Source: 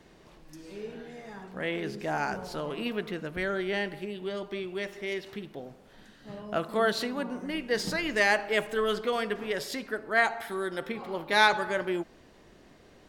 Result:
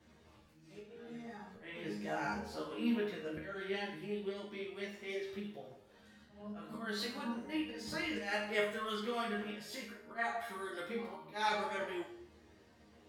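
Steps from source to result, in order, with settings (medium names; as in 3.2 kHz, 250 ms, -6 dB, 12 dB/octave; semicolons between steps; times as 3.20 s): high-pass 45 Hz 24 dB/octave; bass shelf 97 Hz +10.5 dB; hum notches 50/100/150/200/250/300/350/400/450/500 Hz; slow attack 232 ms; chord resonator D#2 sus4, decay 0.56 s; three-phase chorus; trim +10.5 dB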